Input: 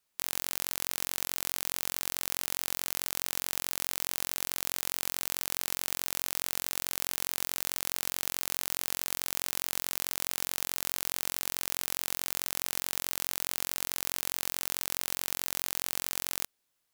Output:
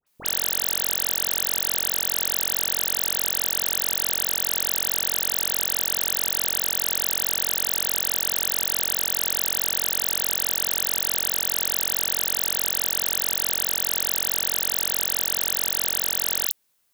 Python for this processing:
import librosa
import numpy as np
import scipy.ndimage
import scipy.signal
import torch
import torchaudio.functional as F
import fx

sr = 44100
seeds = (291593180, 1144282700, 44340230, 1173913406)

y = fx.high_shelf(x, sr, hz=9100.0, db=6.0)
y = fx.dispersion(y, sr, late='highs', ms=67.0, hz=1700.0)
y = y * 10.0 ** (6.0 / 20.0)